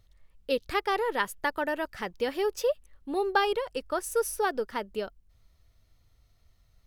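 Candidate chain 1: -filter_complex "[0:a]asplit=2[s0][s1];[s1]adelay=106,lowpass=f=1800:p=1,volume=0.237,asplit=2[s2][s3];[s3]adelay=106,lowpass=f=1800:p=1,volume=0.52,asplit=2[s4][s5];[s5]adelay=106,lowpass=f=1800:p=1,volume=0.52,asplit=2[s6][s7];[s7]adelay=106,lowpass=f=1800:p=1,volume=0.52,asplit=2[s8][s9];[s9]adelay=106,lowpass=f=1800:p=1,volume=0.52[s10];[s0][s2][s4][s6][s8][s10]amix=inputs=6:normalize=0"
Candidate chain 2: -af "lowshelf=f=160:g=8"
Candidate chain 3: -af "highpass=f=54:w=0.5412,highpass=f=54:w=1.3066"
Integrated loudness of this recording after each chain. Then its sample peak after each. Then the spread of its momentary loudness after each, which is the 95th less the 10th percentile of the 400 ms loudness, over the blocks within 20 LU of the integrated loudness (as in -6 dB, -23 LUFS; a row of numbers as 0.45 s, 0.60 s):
-30.0 LUFS, -29.5 LUFS, -30.0 LUFS; -12.0 dBFS, -11.5 dBFS, -11.5 dBFS; 8 LU, 9 LU, 9 LU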